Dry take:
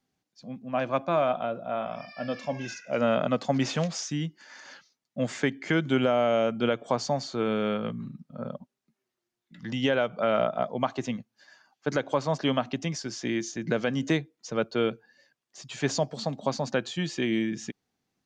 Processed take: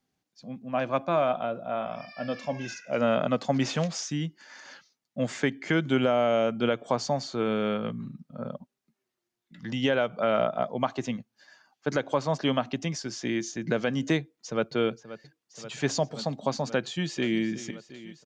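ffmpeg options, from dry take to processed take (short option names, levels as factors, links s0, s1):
-filter_complex "[0:a]asplit=2[s0][s1];[s1]afade=t=in:st=14.18:d=0.01,afade=t=out:st=14.74:d=0.01,aecho=0:1:530|1060|1590|2120|2650|3180|3710|4240|4770|5300|5830|6360:0.188365|0.16011|0.136094|0.11568|0.0983277|0.0835785|0.0710417|0.0603855|0.0513277|0.0436285|0.0370842|0.0315216[s2];[s0][s2]amix=inputs=2:normalize=0,asplit=2[s3][s4];[s4]afade=t=in:st=16.82:d=0.01,afade=t=out:st=17.4:d=0.01,aecho=0:1:360|720|1080|1440|1800|2160|2520|2880|3240|3600|3960|4320:0.158489|0.126791|0.101433|0.0811465|0.0649172|0.0519338|0.041547|0.0332376|0.0265901|0.0212721|0.0170177|0.0136141[s5];[s3][s5]amix=inputs=2:normalize=0"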